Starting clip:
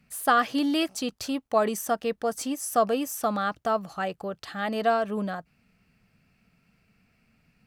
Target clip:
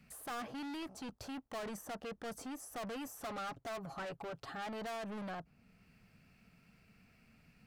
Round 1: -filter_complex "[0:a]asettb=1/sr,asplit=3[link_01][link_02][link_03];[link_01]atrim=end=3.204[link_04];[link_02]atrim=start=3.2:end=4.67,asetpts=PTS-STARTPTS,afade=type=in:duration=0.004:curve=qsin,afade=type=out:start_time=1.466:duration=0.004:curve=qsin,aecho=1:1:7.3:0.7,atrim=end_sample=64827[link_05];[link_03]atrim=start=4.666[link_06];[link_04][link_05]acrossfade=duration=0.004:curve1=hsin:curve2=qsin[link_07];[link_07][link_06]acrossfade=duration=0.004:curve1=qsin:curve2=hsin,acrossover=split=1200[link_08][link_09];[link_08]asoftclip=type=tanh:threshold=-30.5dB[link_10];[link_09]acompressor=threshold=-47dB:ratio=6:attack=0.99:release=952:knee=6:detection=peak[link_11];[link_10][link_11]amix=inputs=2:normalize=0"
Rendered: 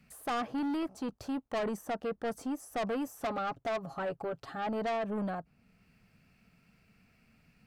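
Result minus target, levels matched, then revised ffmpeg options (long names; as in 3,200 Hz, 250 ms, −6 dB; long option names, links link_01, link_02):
soft clipping: distortion −4 dB
-filter_complex "[0:a]asettb=1/sr,asplit=3[link_01][link_02][link_03];[link_01]atrim=end=3.204[link_04];[link_02]atrim=start=3.2:end=4.67,asetpts=PTS-STARTPTS,afade=type=in:duration=0.004:curve=qsin,afade=type=out:start_time=1.466:duration=0.004:curve=qsin,aecho=1:1:7.3:0.7,atrim=end_sample=64827[link_05];[link_03]atrim=start=4.666[link_06];[link_04][link_05]acrossfade=duration=0.004:curve1=hsin:curve2=qsin[link_07];[link_07][link_06]acrossfade=duration=0.004:curve1=qsin:curve2=hsin,acrossover=split=1200[link_08][link_09];[link_08]asoftclip=type=tanh:threshold=-42dB[link_10];[link_09]acompressor=threshold=-47dB:ratio=6:attack=0.99:release=952:knee=6:detection=peak[link_11];[link_10][link_11]amix=inputs=2:normalize=0"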